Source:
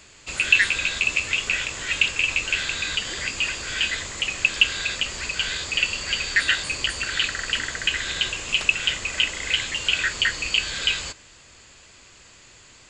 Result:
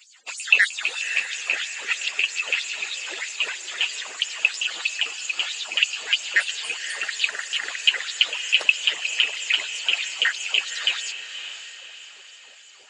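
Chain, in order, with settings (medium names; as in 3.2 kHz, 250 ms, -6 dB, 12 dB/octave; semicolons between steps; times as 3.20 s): harmonic-percussive separation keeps percussive; LFO high-pass sine 3.1 Hz 450–6800 Hz; echo that smears into a reverb 560 ms, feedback 44%, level -10 dB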